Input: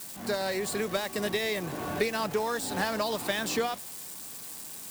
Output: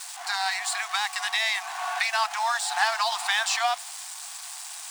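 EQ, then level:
Savitzky-Golay smoothing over 9 samples
linear-phase brick-wall high-pass 670 Hz
+8.0 dB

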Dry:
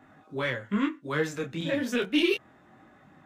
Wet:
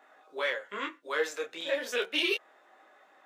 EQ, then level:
Chebyshev high-pass filter 470 Hz, order 3
parametric band 4,000 Hz +2 dB
0.0 dB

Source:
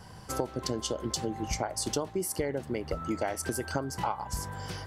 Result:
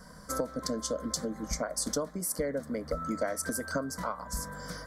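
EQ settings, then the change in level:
phaser with its sweep stopped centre 550 Hz, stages 8
+2.5 dB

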